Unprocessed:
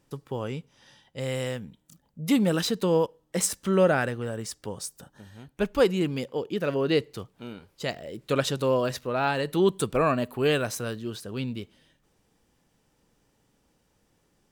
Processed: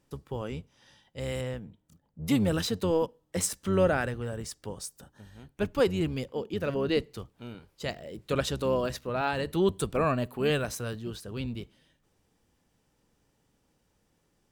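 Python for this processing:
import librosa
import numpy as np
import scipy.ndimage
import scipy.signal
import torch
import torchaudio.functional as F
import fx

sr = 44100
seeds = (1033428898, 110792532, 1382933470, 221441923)

y = fx.octave_divider(x, sr, octaves=1, level_db=-6.0)
y = fx.high_shelf(y, sr, hz=2700.0, db=-9.5, at=(1.41, 2.22))
y = y * 10.0 ** (-3.5 / 20.0)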